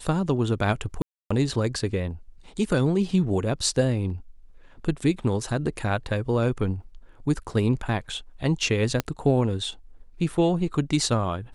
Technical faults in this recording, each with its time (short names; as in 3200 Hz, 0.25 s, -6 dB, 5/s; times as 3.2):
1.02–1.3 gap 0.285 s
9 pop -9 dBFS